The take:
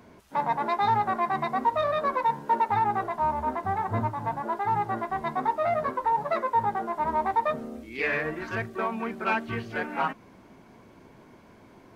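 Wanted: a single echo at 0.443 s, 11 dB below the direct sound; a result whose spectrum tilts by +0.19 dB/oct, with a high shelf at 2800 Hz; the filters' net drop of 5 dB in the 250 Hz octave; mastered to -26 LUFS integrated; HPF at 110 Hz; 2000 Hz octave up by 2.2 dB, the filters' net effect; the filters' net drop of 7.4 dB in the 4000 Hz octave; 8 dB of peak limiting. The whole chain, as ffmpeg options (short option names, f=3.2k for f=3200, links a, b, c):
-af "highpass=110,equalizer=f=250:t=o:g=-6,equalizer=f=2k:t=o:g=7,highshelf=f=2.8k:g=-8.5,equalizer=f=4k:t=o:g=-5.5,alimiter=limit=-22dB:level=0:latency=1,aecho=1:1:443:0.282,volume=5dB"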